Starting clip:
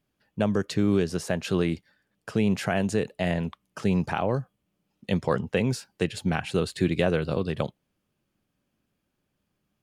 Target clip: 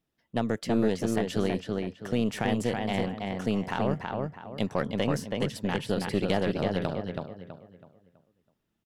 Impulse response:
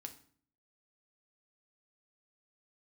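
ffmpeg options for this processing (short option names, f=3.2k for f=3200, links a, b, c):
-filter_complex "[0:a]asplit=2[a][b];[b]adelay=362,lowpass=f=2.9k:p=1,volume=-3dB,asplit=2[c][d];[d]adelay=362,lowpass=f=2.9k:p=1,volume=0.36,asplit=2[e][f];[f]adelay=362,lowpass=f=2.9k:p=1,volume=0.36,asplit=2[g][h];[h]adelay=362,lowpass=f=2.9k:p=1,volume=0.36,asplit=2[i][j];[j]adelay=362,lowpass=f=2.9k:p=1,volume=0.36[k];[a][c][e][g][i][k]amix=inputs=6:normalize=0,aeval=exprs='0.335*(cos(1*acos(clip(val(0)/0.335,-1,1)))-cos(1*PI/2))+0.0376*(cos(4*acos(clip(val(0)/0.335,-1,1)))-cos(4*PI/2))':c=same,asetrate=48951,aresample=44100,volume=-4.5dB"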